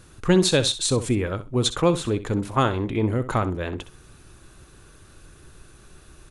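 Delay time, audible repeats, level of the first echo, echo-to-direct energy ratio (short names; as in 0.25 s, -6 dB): 64 ms, 2, -13.5 dB, -13.5 dB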